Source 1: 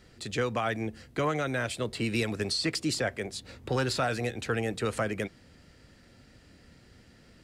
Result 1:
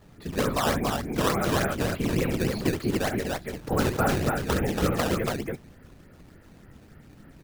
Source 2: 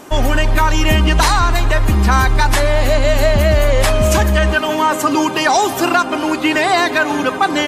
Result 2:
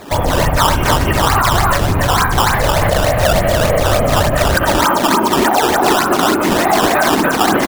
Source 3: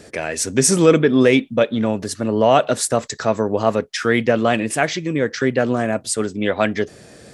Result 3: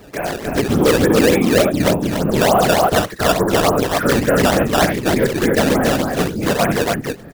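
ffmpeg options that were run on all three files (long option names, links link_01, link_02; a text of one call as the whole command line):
ffmpeg -i in.wav -filter_complex "[0:a]lowpass=1600,equalizer=frequency=520:width_type=o:width=0.77:gain=-4,acrossover=split=370[link_01][link_02];[link_01]asoftclip=type=tanh:threshold=-21dB[link_03];[link_03][link_02]amix=inputs=2:normalize=0,afftfilt=real='hypot(re,im)*cos(2*PI*random(0))':imag='hypot(re,im)*sin(2*PI*random(1))':win_size=512:overlap=0.75,aecho=1:1:67.06|282.8:0.447|0.708,acrusher=samples=12:mix=1:aa=0.000001:lfo=1:lforange=19.2:lforate=3.4,alimiter=level_in=14.5dB:limit=-1dB:release=50:level=0:latency=1,volume=-3.5dB" out.wav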